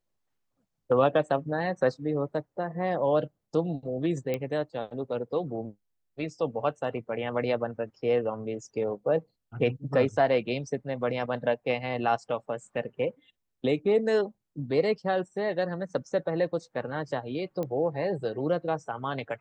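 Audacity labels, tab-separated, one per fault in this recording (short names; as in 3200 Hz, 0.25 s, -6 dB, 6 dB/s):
4.340000	4.340000	pop -17 dBFS
17.630000	17.630000	pop -21 dBFS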